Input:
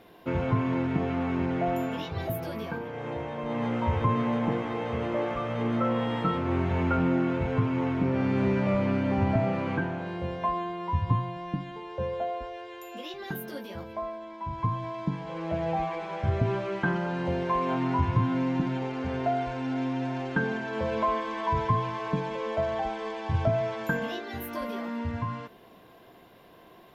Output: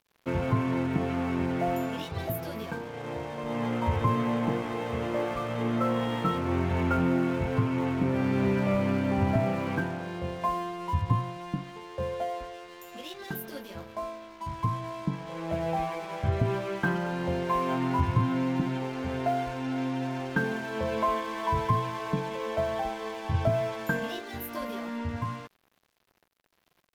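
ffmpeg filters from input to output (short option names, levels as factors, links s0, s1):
-af "aeval=exprs='sgn(val(0))*max(abs(val(0))-0.00398,0)':c=same,highshelf=f=4700:g=4.5"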